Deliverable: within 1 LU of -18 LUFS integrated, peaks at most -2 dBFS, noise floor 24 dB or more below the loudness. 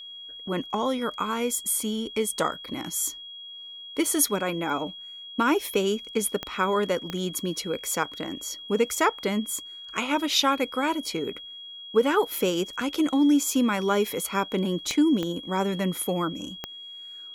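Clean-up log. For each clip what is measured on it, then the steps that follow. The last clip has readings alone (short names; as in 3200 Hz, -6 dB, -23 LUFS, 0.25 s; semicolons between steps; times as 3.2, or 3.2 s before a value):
clicks 5; steady tone 3300 Hz; tone level -39 dBFS; loudness -26.0 LUFS; peak -8.0 dBFS; loudness target -18.0 LUFS
-> de-click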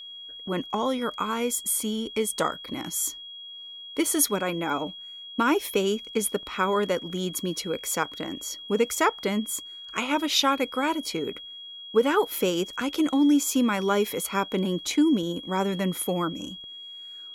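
clicks 0; steady tone 3300 Hz; tone level -39 dBFS
-> notch 3300 Hz, Q 30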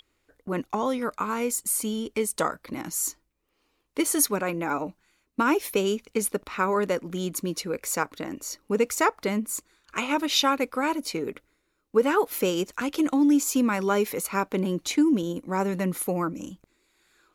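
steady tone none; loudness -26.5 LUFS; peak -8.0 dBFS; loudness target -18.0 LUFS
-> gain +8.5 dB; limiter -2 dBFS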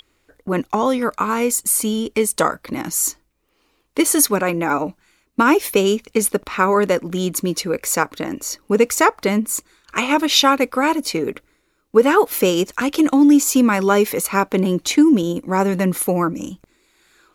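loudness -18.0 LUFS; peak -2.0 dBFS; noise floor -65 dBFS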